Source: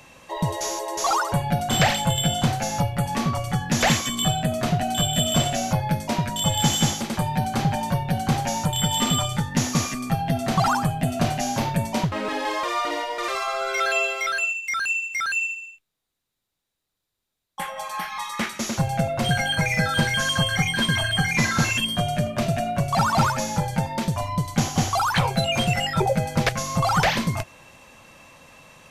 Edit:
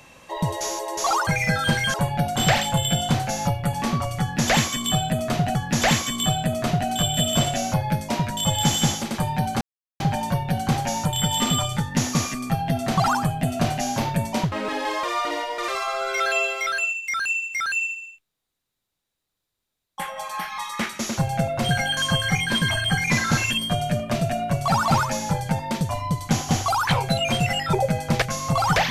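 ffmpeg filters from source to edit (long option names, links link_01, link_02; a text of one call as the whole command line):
ffmpeg -i in.wav -filter_complex "[0:a]asplit=6[link_01][link_02][link_03][link_04][link_05][link_06];[link_01]atrim=end=1.272[link_07];[link_02]atrim=start=19.568:end=20.242[link_08];[link_03]atrim=start=1.268:end=4.882[link_09];[link_04]atrim=start=3.538:end=7.6,asetpts=PTS-STARTPTS,afade=type=out:start_time=4.058:duration=0.004:curve=hsin,apad=pad_dur=0.39[link_10];[link_05]atrim=start=7.6:end=19.572,asetpts=PTS-STARTPTS,afade=type=in:duration=0.004:curve=hsin[link_11];[link_06]atrim=start=20.238[link_12];[link_07][link_08]acrossfade=duration=0.004:curve1=hsin:curve2=hsin[link_13];[link_13][link_09]acrossfade=duration=0.004:curve1=hsin:curve2=hsin[link_14];[link_10][link_11]concat=n=2:v=0:a=1[link_15];[link_14][link_15]acrossfade=duration=0.004:curve1=hsin:curve2=hsin[link_16];[link_16][link_12]acrossfade=duration=0.004:curve1=hsin:curve2=hsin" out.wav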